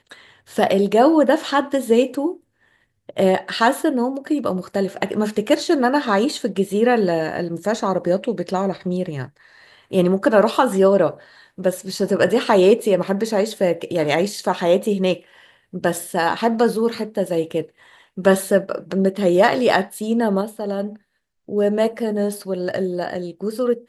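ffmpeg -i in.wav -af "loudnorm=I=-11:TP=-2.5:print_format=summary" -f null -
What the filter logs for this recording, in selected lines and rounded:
Input Integrated:    -19.9 LUFS
Input True Peak:      -1.7 dBTP
Input LRA:             4.9 LU
Input Threshold:     -30.4 LUFS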